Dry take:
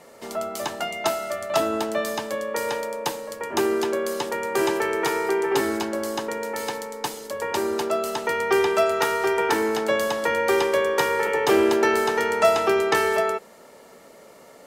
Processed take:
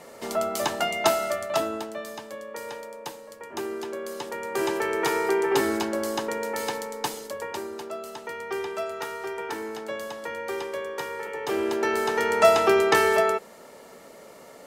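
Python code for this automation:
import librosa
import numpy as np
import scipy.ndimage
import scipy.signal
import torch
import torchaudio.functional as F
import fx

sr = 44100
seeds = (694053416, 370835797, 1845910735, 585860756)

y = fx.gain(x, sr, db=fx.line((1.25, 2.5), (1.95, -10.0), (3.8, -10.0), (5.15, -0.5), (7.19, -0.5), (7.7, -11.0), (11.33, -11.0), (12.45, 1.0)))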